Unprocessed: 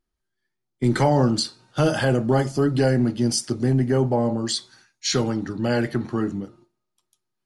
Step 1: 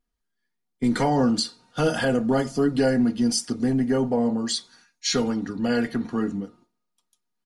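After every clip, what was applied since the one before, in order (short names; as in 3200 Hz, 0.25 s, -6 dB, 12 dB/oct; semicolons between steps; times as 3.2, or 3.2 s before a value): comb 4.2 ms, depth 61%; gain -2.5 dB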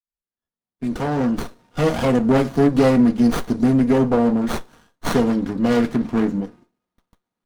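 opening faded in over 2.40 s; running maximum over 17 samples; gain +6.5 dB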